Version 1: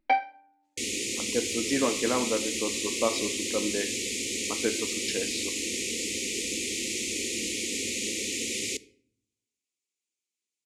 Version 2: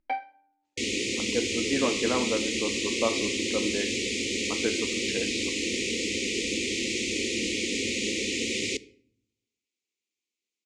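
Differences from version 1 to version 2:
first sound −6.5 dB
second sound +5.5 dB
master: add high-frequency loss of the air 100 metres

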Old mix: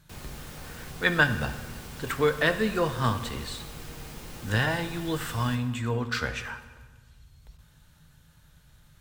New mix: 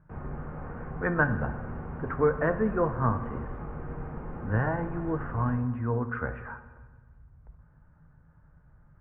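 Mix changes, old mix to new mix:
background: send +8.0 dB
master: add inverse Chebyshev low-pass filter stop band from 3,700 Hz, stop band 50 dB

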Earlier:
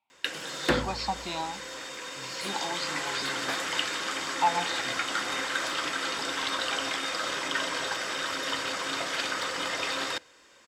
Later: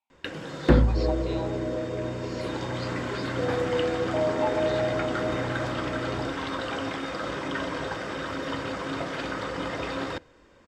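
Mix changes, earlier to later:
speech −7.5 dB
first sound: add spectral tilt −4.5 dB per octave
second sound: unmuted

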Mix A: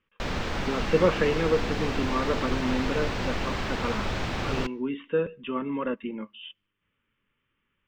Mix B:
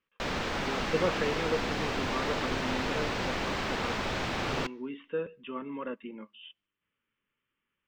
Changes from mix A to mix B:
speech −6.5 dB
master: add low-shelf EQ 130 Hz −10 dB

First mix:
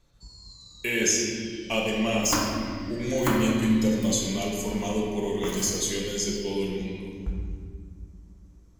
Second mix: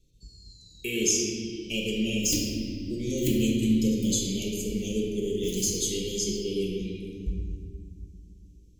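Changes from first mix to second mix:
first sound −4.0 dB
master: add elliptic band-stop filter 440–2,700 Hz, stop band 50 dB

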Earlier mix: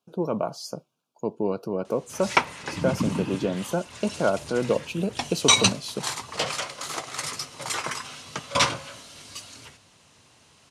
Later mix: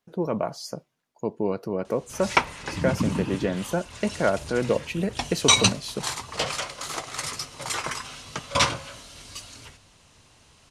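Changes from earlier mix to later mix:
speech: remove Butterworth band-reject 1,900 Hz, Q 2.1
master: remove high-pass filter 110 Hz 12 dB per octave

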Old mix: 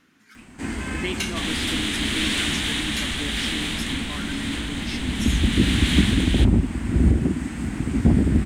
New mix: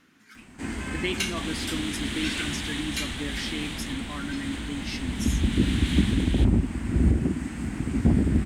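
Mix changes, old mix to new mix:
first sound −3.5 dB
second sound −9.0 dB

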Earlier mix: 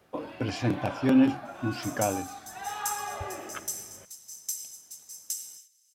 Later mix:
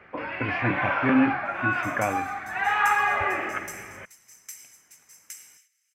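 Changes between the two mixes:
speech: add high-frequency loss of the air 210 metres
first sound +7.5 dB
master: add drawn EQ curve 680 Hz 0 dB, 2,200 Hz +14 dB, 3,700 Hz −8 dB

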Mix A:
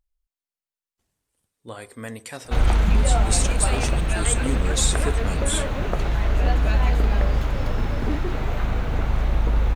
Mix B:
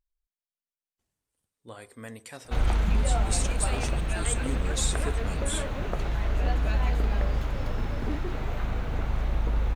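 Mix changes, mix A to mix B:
speech −7.0 dB
background −6.0 dB

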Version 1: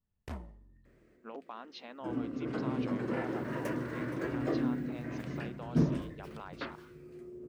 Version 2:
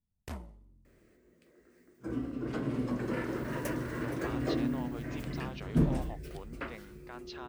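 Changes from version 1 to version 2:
speech: entry +2.75 s
second sound: remove high-pass filter 110 Hz 12 dB per octave
master: add high-shelf EQ 5,000 Hz +11 dB

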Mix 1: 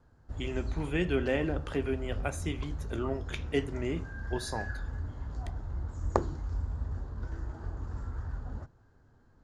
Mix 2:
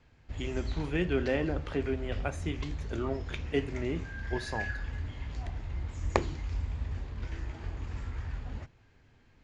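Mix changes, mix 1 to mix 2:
background: remove drawn EQ curve 1,500 Hz 0 dB, 2,300 Hz −22 dB, 4,300 Hz −11 dB
master: add high-frequency loss of the air 76 metres

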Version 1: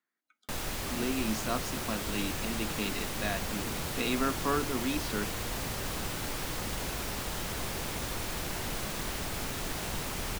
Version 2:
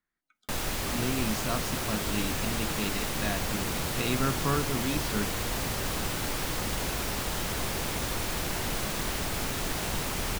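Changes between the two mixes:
speech: remove high-pass filter 210 Hz 24 dB per octave
background +4.0 dB

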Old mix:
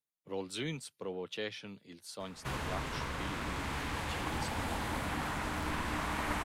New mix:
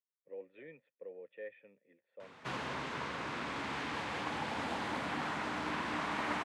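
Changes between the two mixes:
speech: add formant resonators in series e
master: add band-pass filter 180–5,400 Hz

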